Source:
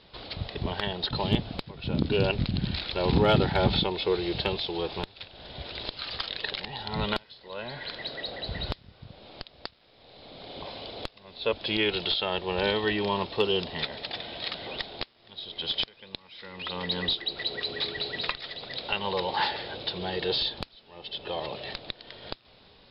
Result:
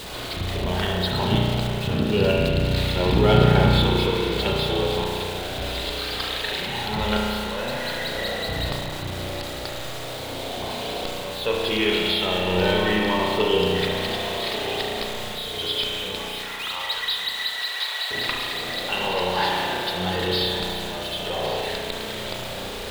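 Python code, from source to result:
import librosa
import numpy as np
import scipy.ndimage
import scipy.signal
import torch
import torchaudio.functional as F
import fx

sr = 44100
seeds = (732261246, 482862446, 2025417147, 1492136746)

y = x + 0.5 * 10.0 ** (-31.5 / 20.0) * np.sign(x)
y = fx.highpass(y, sr, hz=800.0, slope=24, at=(16.39, 18.11))
y = y + 10.0 ** (-14.5 / 20.0) * np.pad(y, (int(1142 * sr / 1000.0), 0))[:len(y)]
y = fx.rev_spring(y, sr, rt60_s=2.4, pass_ms=(33,), chirp_ms=45, drr_db=-2.5)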